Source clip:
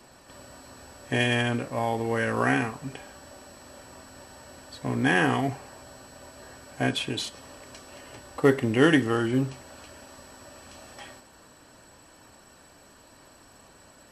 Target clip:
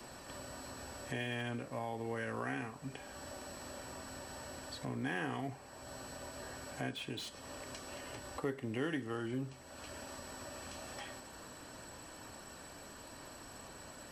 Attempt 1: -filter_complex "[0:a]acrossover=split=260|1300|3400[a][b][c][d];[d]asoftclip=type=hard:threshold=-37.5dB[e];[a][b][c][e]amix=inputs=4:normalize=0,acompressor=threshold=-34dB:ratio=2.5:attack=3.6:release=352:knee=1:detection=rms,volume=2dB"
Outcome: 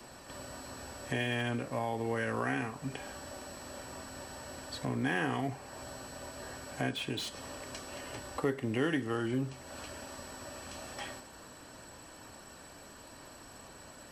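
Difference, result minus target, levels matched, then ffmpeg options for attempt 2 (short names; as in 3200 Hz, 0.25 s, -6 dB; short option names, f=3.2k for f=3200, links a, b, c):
compressor: peak gain reduction -6 dB
-filter_complex "[0:a]acrossover=split=260|1300|3400[a][b][c][d];[d]asoftclip=type=hard:threshold=-37.5dB[e];[a][b][c][e]amix=inputs=4:normalize=0,acompressor=threshold=-44dB:ratio=2.5:attack=3.6:release=352:knee=1:detection=rms,volume=2dB"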